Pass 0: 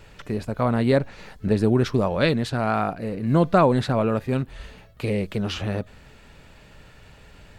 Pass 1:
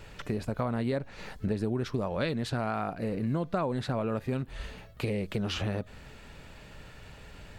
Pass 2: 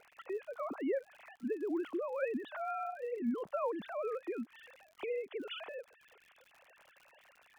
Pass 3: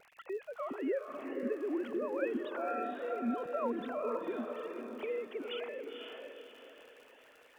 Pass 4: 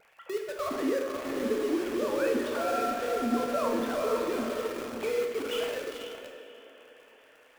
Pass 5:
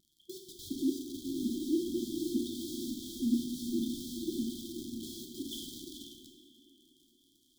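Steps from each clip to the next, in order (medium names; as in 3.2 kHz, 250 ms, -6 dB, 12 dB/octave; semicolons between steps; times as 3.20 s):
compression 5:1, threshold -28 dBFS, peak gain reduction 13.5 dB
formants replaced by sine waves; crackle 73 per s -43 dBFS; trim -7 dB
vibrato 1.1 Hz 12 cents; echo that smears into a reverb 502 ms, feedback 40%, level -4 dB
in parallel at -10.5 dB: companded quantiser 2-bit; on the sum: plate-style reverb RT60 1.2 s, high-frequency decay 0.95×, DRR 1.5 dB
brick-wall FIR band-stop 370–3100 Hz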